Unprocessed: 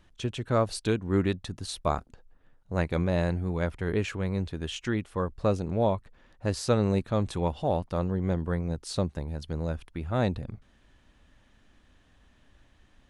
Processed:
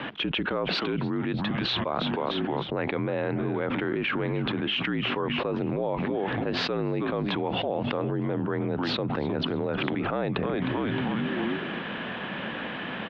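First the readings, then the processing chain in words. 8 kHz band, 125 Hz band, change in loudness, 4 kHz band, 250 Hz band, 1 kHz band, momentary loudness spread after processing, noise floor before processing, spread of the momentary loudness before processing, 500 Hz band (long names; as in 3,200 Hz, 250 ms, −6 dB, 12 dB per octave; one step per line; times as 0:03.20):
below −15 dB, −2.5 dB, +1.0 dB, +10.0 dB, +3.0 dB, +3.0 dB, 3 LU, −62 dBFS, 8 LU, +1.0 dB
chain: echo with shifted repeats 310 ms, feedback 47%, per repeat −130 Hz, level −15.5 dB
single-sideband voice off tune −52 Hz 230–3,300 Hz
envelope flattener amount 100%
level −7 dB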